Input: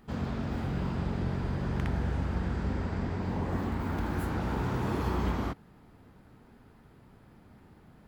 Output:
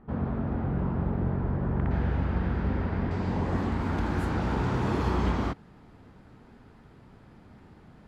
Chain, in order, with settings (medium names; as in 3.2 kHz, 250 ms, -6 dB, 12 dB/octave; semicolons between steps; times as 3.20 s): low-pass 1.3 kHz 12 dB/octave, from 1.91 s 3 kHz, from 3.11 s 7.8 kHz; trim +3.5 dB